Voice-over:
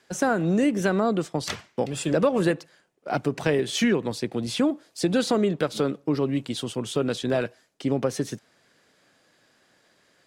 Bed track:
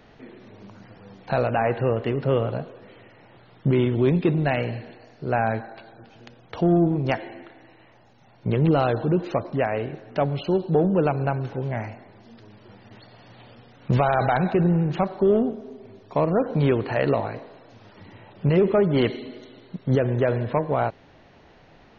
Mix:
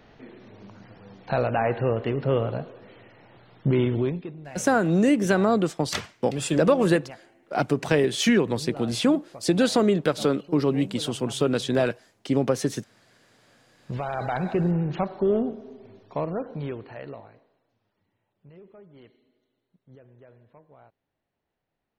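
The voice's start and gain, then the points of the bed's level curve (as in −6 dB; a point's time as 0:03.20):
4.45 s, +2.0 dB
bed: 0:03.97 −1.5 dB
0:04.33 −19 dB
0:13.38 −19 dB
0:14.55 −3.5 dB
0:15.95 −3.5 dB
0:18.15 −30.5 dB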